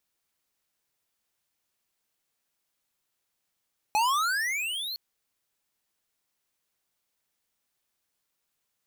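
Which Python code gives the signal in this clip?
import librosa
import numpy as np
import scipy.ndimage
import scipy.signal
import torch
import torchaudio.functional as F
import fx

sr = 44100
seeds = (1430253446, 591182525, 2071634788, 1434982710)

y = fx.riser_tone(sr, length_s=1.01, level_db=-23, wave='square', hz=826.0, rise_st=29.0, swell_db=-11)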